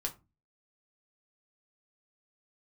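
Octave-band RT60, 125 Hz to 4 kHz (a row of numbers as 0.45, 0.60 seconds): 0.50, 0.45, 0.30, 0.25, 0.20, 0.15 seconds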